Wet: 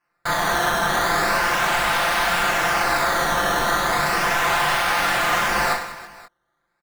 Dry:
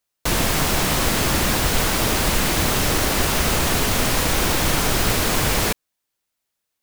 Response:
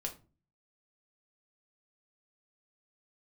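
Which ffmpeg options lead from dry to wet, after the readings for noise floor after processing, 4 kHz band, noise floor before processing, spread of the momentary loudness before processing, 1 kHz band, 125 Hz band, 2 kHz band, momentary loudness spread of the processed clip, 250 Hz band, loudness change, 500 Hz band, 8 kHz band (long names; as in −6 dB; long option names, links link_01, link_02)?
−74 dBFS, −3.0 dB, −79 dBFS, 1 LU, +6.0 dB, −11.0 dB, +4.5 dB, 2 LU, −7.5 dB, −0.5 dB, −0.5 dB, −7.0 dB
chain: -af "lowshelf=frequency=490:width_type=q:width=3:gain=-12.5,acrusher=samples=12:mix=1:aa=0.000001:lfo=1:lforange=12:lforate=0.36,equalizer=frequency=1500:width_type=o:width=1.4:gain=9.5,asoftclip=type=tanh:threshold=-18dB,flanger=delay=19.5:depth=6.9:speed=1.6,aecho=1:1:5.8:0.65,aecho=1:1:40|100|190|325|527.5:0.631|0.398|0.251|0.158|0.1"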